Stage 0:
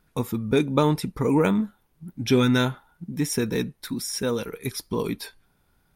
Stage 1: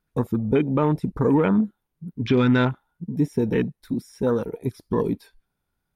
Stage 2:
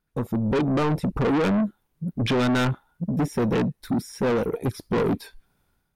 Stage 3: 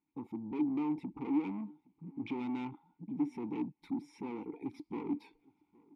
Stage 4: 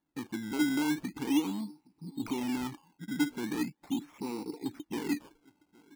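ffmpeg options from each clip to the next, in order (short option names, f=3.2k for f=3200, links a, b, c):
-filter_complex "[0:a]afwtdn=0.02,acrossover=split=3100[a][b];[b]acompressor=threshold=-51dB:ratio=4:attack=1:release=60[c];[a][c]amix=inputs=2:normalize=0,alimiter=limit=-14dB:level=0:latency=1:release=117,volume=4dB"
-af "dynaudnorm=f=110:g=7:m=12.5dB,asoftclip=type=tanh:threshold=-18.5dB,volume=-1dB"
-filter_complex "[0:a]alimiter=level_in=7dB:limit=-24dB:level=0:latency=1:release=112,volume=-7dB,asplit=3[a][b][c];[a]bandpass=f=300:t=q:w=8,volume=0dB[d];[b]bandpass=f=870:t=q:w=8,volume=-6dB[e];[c]bandpass=f=2.24k:t=q:w=8,volume=-9dB[f];[d][e][f]amix=inputs=3:normalize=0,asplit=2[g][h];[h]adelay=816.3,volume=-25dB,highshelf=f=4k:g=-18.4[i];[g][i]amix=inputs=2:normalize=0,volume=7dB"
-af "acrusher=samples=17:mix=1:aa=0.000001:lfo=1:lforange=17:lforate=0.4,volume=4dB"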